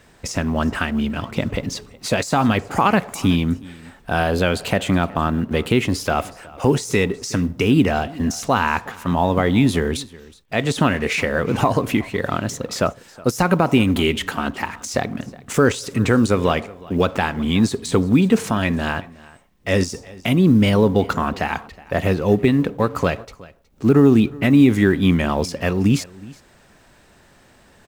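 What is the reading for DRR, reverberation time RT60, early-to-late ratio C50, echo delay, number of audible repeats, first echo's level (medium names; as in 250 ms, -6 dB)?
no reverb, no reverb, no reverb, 368 ms, 1, -21.5 dB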